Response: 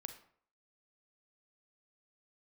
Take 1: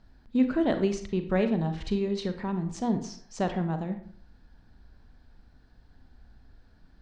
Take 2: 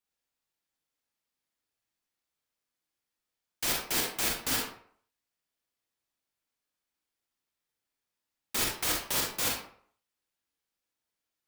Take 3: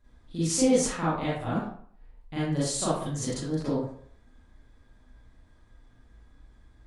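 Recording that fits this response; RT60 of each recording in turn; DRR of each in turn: 1; 0.55, 0.55, 0.60 seconds; 7.5, −1.5, −10.0 decibels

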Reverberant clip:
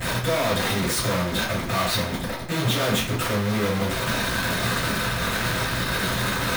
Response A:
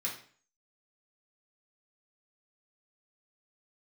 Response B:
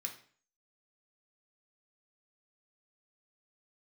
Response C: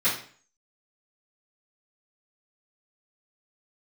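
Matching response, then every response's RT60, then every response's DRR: C; 0.45, 0.45, 0.45 seconds; −5.0, 1.5, −15.0 decibels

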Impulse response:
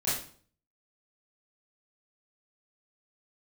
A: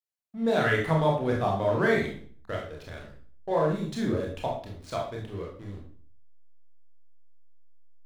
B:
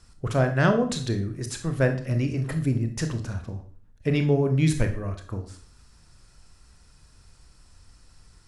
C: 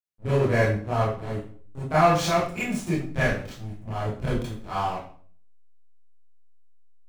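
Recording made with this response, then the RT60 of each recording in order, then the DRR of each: C; 0.50, 0.50, 0.50 seconds; −2.0, 6.0, −11.5 decibels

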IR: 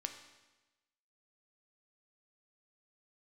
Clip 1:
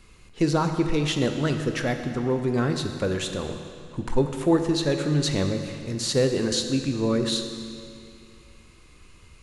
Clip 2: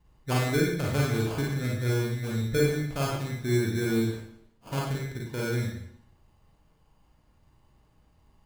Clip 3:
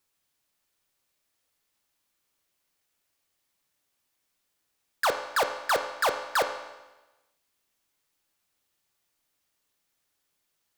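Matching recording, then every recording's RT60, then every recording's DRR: 3; 2.5, 0.70, 1.1 seconds; 5.5, −3.5, 5.0 decibels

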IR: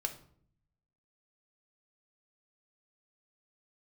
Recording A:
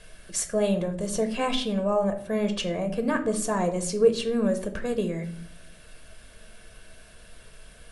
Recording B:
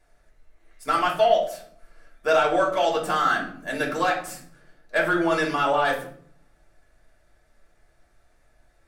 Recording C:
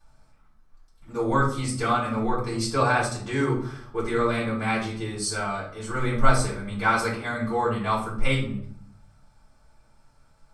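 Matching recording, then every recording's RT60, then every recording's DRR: A; 0.60, 0.60, 0.60 seconds; 4.5, −2.5, −9.0 decibels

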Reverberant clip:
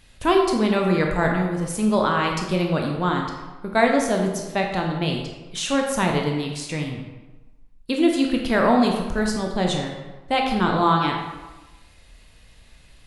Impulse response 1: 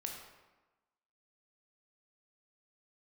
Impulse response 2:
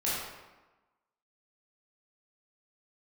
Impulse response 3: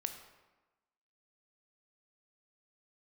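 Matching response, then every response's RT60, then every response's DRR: 1; 1.2, 1.2, 1.2 seconds; 1.0, −9.0, 6.5 decibels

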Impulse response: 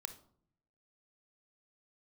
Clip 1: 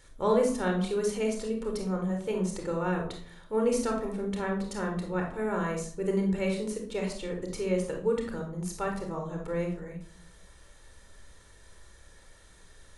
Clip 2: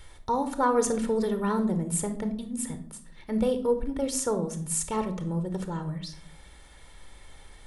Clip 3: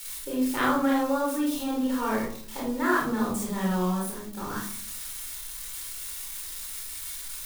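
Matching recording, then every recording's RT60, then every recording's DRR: 2; 0.60, 0.60, 0.60 seconds; 1.5, 9.0, −5.0 decibels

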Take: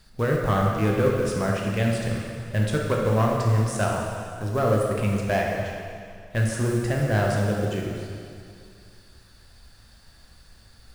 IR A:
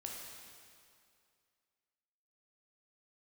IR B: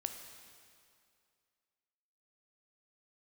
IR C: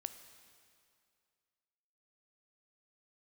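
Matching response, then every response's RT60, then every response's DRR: A; 2.3, 2.3, 2.3 seconds; −1.5, 5.5, 9.5 decibels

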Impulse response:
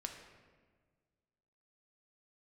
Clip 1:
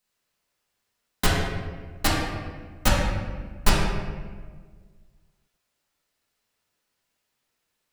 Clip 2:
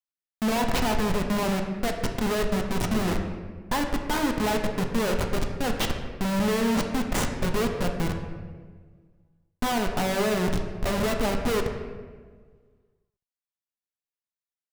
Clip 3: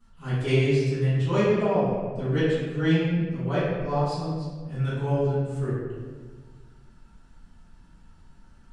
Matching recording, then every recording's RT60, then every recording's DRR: 2; 1.5, 1.6, 1.5 seconds; −7.0, 3.0, −16.5 decibels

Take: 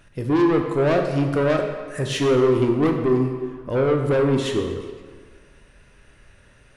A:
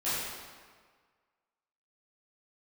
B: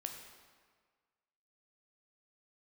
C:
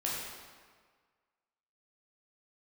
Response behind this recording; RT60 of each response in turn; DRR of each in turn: B; 1.6, 1.6, 1.6 seconds; −14.0, 3.0, −5.5 decibels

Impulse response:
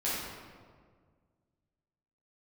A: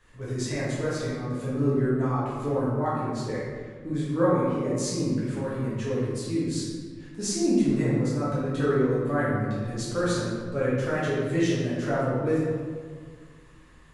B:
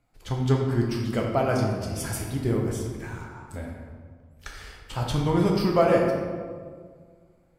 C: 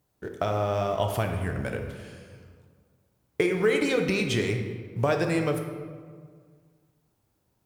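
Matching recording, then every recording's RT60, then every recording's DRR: A; 1.8, 1.8, 1.8 seconds; −9.5, −1.0, 4.0 decibels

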